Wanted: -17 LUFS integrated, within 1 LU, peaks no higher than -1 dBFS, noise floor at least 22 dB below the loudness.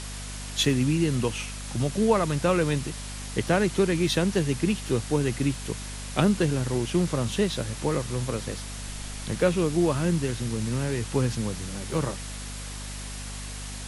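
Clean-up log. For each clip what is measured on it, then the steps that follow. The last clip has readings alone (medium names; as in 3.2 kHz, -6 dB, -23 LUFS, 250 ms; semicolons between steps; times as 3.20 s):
hum 50 Hz; highest harmonic 250 Hz; hum level -35 dBFS; noise floor -36 dBFS; noise floor target -49 dBFS; loudness -27.0 LUFS; peak level -8.5 dBFS; loudness target -17.0 LUFS
-> de-hum 50 Hz, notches 5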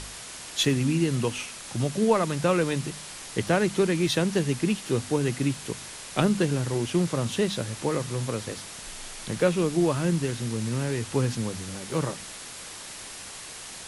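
hum not found; noise floor -41 dBFS; noise floor target -49 dBFS
-> noise reduction 8 dB, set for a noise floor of -41 dBFS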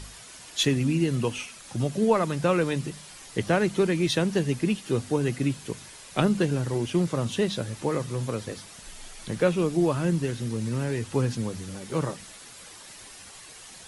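noise floor -46 dBFS; noise floor target -49 dBFS
-> noise reduction 6 dB, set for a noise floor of -46 dBFS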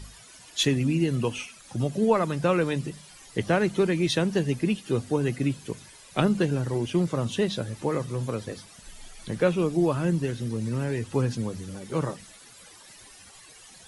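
noise floor -50 dBFS; loudness -27.0 LUFS; peak level -9.0 dBFS; loudness target -17.0 LUFS
-> trim +10 dB; peak limiter -1 dBFS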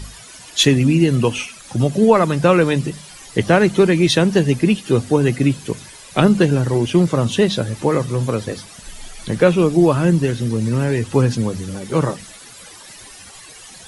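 loudness -17.0 LUFS; peak level -1.0 dBFS; noise floor -40 dBFS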